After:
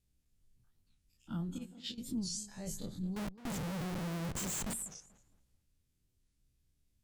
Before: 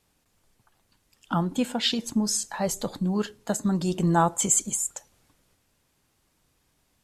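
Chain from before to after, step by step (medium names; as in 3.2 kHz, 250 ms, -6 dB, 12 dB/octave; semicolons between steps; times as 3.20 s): every event in the spectrogram widened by 60 ms; 1.58–1.98 s: gate -19 dBFS, range -15 dB; amplifier tone stack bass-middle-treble 10-0-1; hum notches 50/100/150/200 Hz; 3.16–4.74 s: Schmitt trigger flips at -47 dBFS; tape echo 218 ms, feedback 29%, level -14.5 dB, low-pass 3.3 kHz; warped record 45 rpm, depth 250 cents; trim +2.5 dB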